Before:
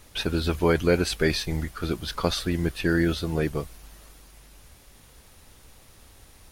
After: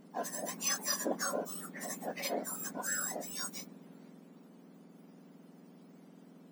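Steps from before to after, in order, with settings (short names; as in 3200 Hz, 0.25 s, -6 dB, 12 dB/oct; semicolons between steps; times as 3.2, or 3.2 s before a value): spectrum mirrored in octaves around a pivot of 1600 Hz; 1.14–2.79 three-band squash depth 40%; gain -8 dB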